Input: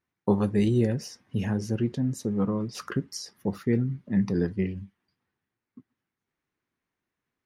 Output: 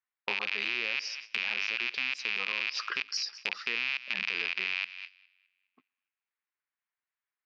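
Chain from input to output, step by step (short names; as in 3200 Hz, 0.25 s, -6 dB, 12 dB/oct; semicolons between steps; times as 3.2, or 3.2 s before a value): rattling part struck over -37 dBFS, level -17 dBFS; elliptic low-pass 5000 Hz, stop band 60 dB; high shelf 3400 Hz +11.5 dB; thinning echo 0.206 s, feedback 48%, high-pass 1200 Hz, level -18 dB; in parallel at +1 dB: limiter -19.5 dBFS, peak gain reduction 11 dB; on the sum: gate -40 dBFS, range -14 dB; HPF 930 Hz 12 dB/oct; low-pass opened by the level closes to 2500 Hz, open at -31 dBFS; compressor 2:1, threshold -33 dBFS, peak gain reduction 8.5 dB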